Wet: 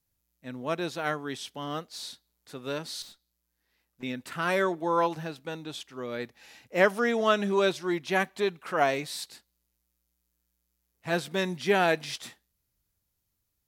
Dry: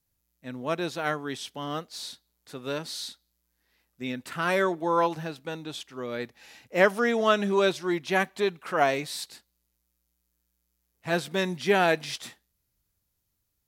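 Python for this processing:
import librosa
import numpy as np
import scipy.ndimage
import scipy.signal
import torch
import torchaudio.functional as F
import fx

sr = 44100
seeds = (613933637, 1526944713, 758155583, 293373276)

y = fx.tube_stage(x, sr, drive_db=45.0, bias=0.55, at=(3.02, 4.03))
y = y * librosa.db_to_amplitude(-1.5)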